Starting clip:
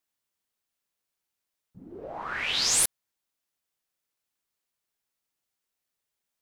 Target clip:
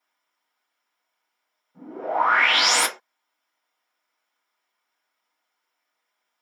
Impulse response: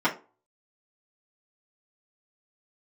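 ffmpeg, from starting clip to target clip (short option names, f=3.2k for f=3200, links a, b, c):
-filter_complex "[0:a]highpass=510[a];[1:a]atrim=start_sample=2205,afade=t=out:st=0.19:d=0.01,atrim=end_sample=8820[b];[a][b]afir=irnorm=-1:irlink=0"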